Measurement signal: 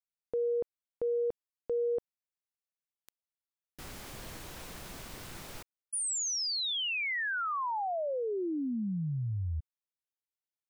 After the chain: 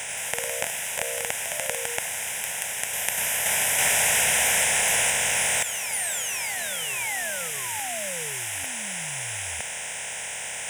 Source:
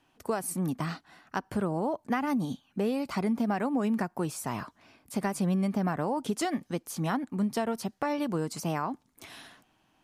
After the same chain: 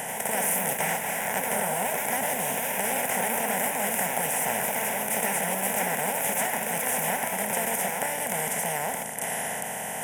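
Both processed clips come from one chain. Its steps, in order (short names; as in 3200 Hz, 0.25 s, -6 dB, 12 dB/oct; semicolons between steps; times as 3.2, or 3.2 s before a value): per-bin compression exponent 0.2; echoes that change speed 86 ms, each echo +2 st, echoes 3; tilt +2.5 dB/oct; reverse; upward compressor, threshold -21 dBFS; reverse; fixed phaser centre 1200 Hz, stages 6; gain -4 dB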